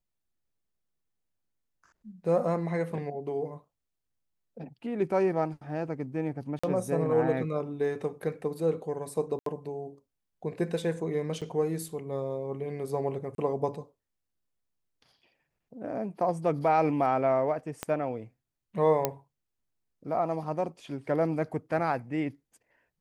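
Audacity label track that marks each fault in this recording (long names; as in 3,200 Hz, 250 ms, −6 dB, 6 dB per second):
6.590000	6.630000	drop-out 45 ms
9.390000	9.460000	drop-out 73 ms
11.410000	11.420000	drop-out 6.7 ms
13.350000	13.380000	drop-out 32 ms
17.830000	17.830000	click −16 dBFS
19.050000	19.050000	click −10 dBFS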